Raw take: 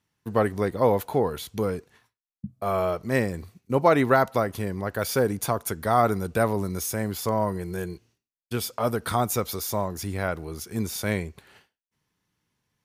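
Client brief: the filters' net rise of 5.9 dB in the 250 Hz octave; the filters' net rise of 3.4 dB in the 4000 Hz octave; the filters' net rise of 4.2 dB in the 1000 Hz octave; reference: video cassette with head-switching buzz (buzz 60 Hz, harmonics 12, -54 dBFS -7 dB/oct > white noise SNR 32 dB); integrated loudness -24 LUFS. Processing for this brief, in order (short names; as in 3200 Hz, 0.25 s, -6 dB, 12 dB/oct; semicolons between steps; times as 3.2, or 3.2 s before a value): bell 250 Hz +7 dB; bell 1000 Hz +5 dB; bell 4000 Hz +4 dB; buzz 60 Hz, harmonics 12, -54 dBFS -7 dB/oct; white noise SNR 32 dB; gain -1.5 dB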